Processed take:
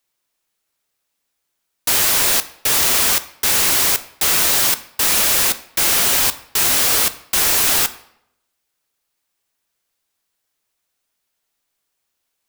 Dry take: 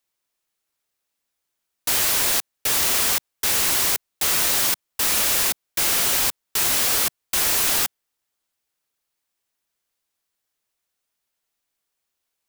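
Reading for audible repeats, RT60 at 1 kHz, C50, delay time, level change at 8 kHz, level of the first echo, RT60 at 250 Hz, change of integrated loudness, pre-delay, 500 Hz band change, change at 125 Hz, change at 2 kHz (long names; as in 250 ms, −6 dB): no echo audible, 0.75 s, 15.5 dB, no echo audible, +4.5 dB, no echo audible, 0.70 s, +4.5 dB, 6 ms, +5.0 dB, +5.0 dB, +5.0 dB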